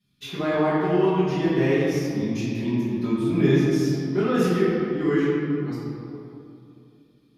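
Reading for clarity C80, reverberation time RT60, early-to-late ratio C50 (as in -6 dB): -1.0 dB, 2.7 s, -2.5 dB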